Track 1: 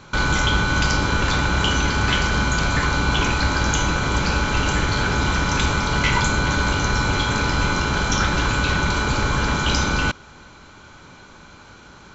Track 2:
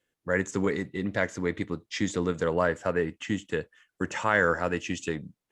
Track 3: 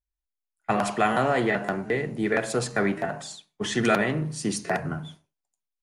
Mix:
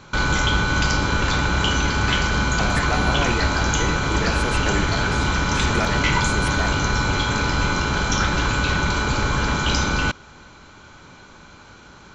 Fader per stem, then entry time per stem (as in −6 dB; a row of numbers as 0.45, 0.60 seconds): −0.5, −18.0, −4.0 decibels; 0.00, 0.00, 1.90 seconds